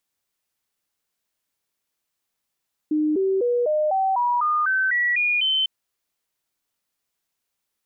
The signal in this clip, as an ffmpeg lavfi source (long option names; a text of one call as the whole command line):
ffmpeg -f lavfi -i "aevalsrc='0.126*clip(min(mod(t,0.25),0.25-mod(t,0.25))/0.005,0,1)*sin(2*PI*305*pow(2,floor(t/0.25)/3)*mod(t,0.25))':duration=2.75:sample_rate=44100" out.wav